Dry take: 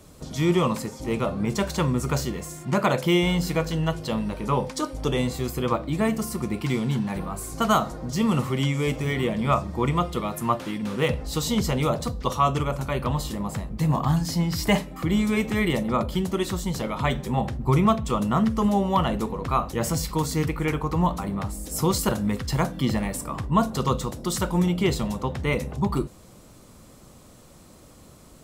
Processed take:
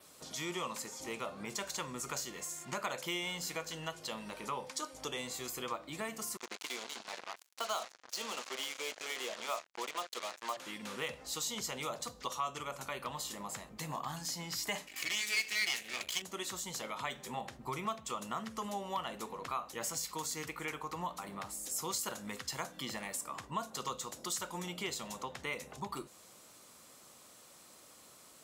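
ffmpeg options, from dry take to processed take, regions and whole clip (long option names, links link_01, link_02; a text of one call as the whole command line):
ffmpeg -i in.wav -filter_complex "[0:a]asettb=1/sr,asplit=3[link_01][link_02][link_03];[link_01]atrim=end=6.374[link_04];[link_02]atrim=start=6.37:end=10.57,asetpts=PTS-STARTPTS,afade=type=in:duration=0.004:curve=qsin,afade=type=out:start_time=4.196:duration=0.004:curve=qsin,highpass=frequency=280:width=0.5412,highpass=frequency=280:width=1.3066,equalizer=frequency=300:width_type=q:width=4:gain=-6,equalizer=frequency=630:width_type=q:width=4:gain=4,equalizer=frequency=1200:width_type=q:width=4:gain=-3,equalizer=frequency=1800:width_type=q:width=4:gain=-6,equalizer=frequency=4300:width_type=q:width=4:gain=8,lowpass=frequency=6300:width=0.5412,lowpass=frequency=6300:width=1.3066,acrusher=bits=4:mix=0:aa=0.5[link_05];[link_03]atrim=start=10.566[link_06];[link_04][link_05]acrossfade=duration=0.004:curve1=hsin:curve2=qsin[link_07];[link_07][link_06]acrossfade=duration=0.004:curve1=qsin:curve2=hsin,asettb=1/sr,asplit=3[link_08][link_09][link_10];[link_08]atrim=end=14.874[link_11];[link_09]atrim=start=14.87:end=16.22,asetpts=PTS-STARTPTS,afade=type=in:duration=0.004:curve=qsin,afade=type=out:start_time=1.346:duration=0.004:curve=qsin,highshelf=frequency=1600:width_type=q:width=3:gain=12,aecho=1:1:2.7:0.31,atrim=end_sample=59535,aeval=exprs='max(val(0),0)':channel_layout=same[link_12];[link_10]atrim=start=16.216[link_13];[link_11][link_12]acrossfade=duration=0.004:curve1=hsin:curve2=qsin[link_14];[link_14][link_13]acrossfade=duration=0.004:curve1=qsin:curve2=hsin,highpass=frequency=1300:poles=1,adynamicequalizer=threshold=0.00282:dfrequency=6800:dqfactor=3.5:tfrequency=6800:tqfactor=3.5:attack=5:release=100:ratio=0.375:range=3:mode=boostabove:tftype=bell,acompressor=threshold=-39dB:ratio=2,volume=-1.5dB" out.wav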